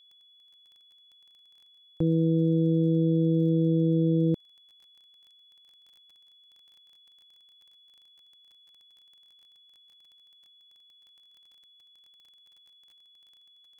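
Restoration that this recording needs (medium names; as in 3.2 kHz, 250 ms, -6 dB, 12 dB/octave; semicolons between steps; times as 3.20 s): de-click; band-stop 3.4 kHz, Q 30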